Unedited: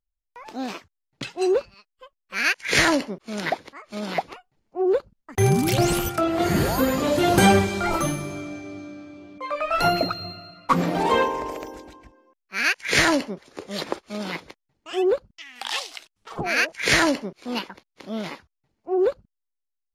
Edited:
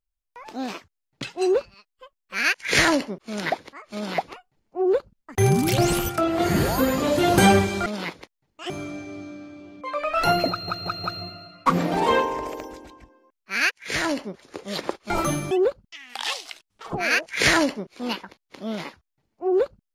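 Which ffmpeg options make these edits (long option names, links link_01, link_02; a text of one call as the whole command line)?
ffmpeg -i in.wav -filter_complex "[0:a]asplit=9[link_01][link_02][link_03][link_04][link_05][link_06][link_07][link_08][link_09];[link_01]atrim=end=7.862[link_10];[link_02]atrim=start=14.128:end=14.972[link_11];[link_03]atrim=start=8.268:end=10.252[link_12];[link_04]atrim=start=10.068:end=10.252[link_13];[link_05]atrim=start=10.068:end=10.252[link_14];[link_06]atrim=start=10.068:end=12.74,asetpts=PTS-STARTPTS,afade=type=out:start_time=2.668:duration=0.004:curve=hsin:silence=0.0944061[link_15];[link_07]atrim=start=12.74:end=14.132,asetpts=PTS-STARTPTS,afade=type=in:duration=0.71:silence=0.0944061[link_16];[link_08]atrim=start=7.858:end=8.272[link_17];[link_09]atrim=start=14.968[link_18];[link_10][link_11]acrossfade=duration=0.004:curve1=hsin:curve2=hsin[link_19];[link_19][link_12]acrossfade=duration=0.004:curve1=hsin:curve2=hsin[link_20];[link_20][link_13]acrossfade=duration=0.004:curve1=hsin:curve2=hsin[link_21];[link_21][link_14]acrossfade=duration=0.004:curve1=hsin:curve2=hsin[link_22];[link_15][link_16]concat=n=2:v=0:a=1[link_23];[link_22][link_23]acrossfade=duration=0.004:curve1=hsin:curve2=hsin[link_24];[link_24][link_17]acrossfade=duration=0.004:curve1=hsin:curve2=hsin[link_25];[link_25][link_18]acrossfade=duration=0.004:curve1=hsin:curve2=hsin" out.wav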